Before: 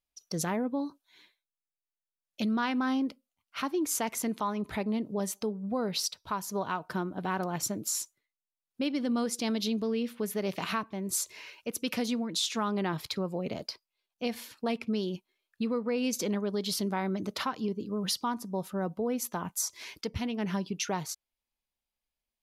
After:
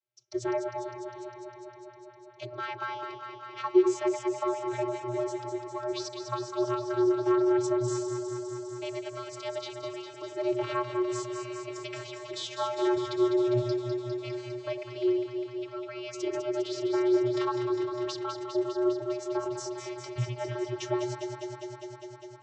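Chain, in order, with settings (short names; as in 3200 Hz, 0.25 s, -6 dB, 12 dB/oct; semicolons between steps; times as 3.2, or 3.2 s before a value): vocoder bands 32, square 122 Hz; echo with dull and thin repeats by turns 0.101 s, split 810 Hz, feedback 89%, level -6 dB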